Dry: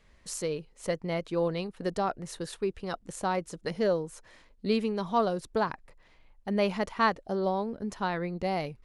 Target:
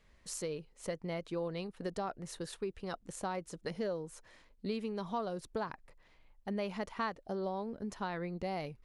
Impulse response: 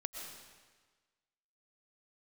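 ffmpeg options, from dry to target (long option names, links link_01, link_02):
-af "acompressor=threshold=-30dB:ratio=3,volume=-4.5dB"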